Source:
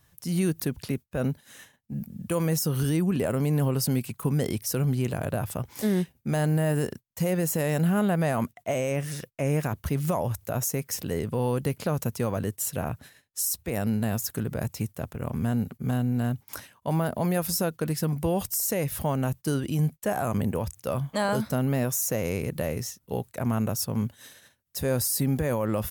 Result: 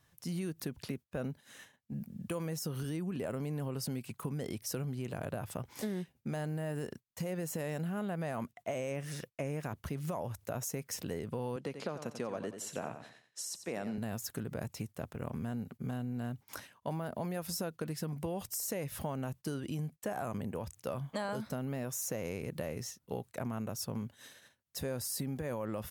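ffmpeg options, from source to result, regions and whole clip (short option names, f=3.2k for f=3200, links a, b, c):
-filter_complex "[0:a]asettb=1/sr,asplit=3[a][b][c];[a]atrim=end=11.564[d];[b]atrim=start=11.56:end=13.98,asetpts=PTS-STARTPTS,afade=t=in:d=0.004:c=qsin,afade=t=out:st=2.416:d=0.004:c=qsin,highpass=210,lowpass=6.9k,aecho=1:1:90|180|270|360:0.282|0.093|0.0307|0.0101,atrim=end_sample=106722[e];[c]atrim=start=13.976[f];[d][e]acrossfade=d=0.004:c1=hsin:c2=qsin[g];[g][f]acrossfade=d=0.004:c1=qsin:c2=hsin,highshelf=f=10k:g=-9,acompressor=threshold=-29dB:ratio=6,lowshelf=f=82:g=-9,volume=-4dB"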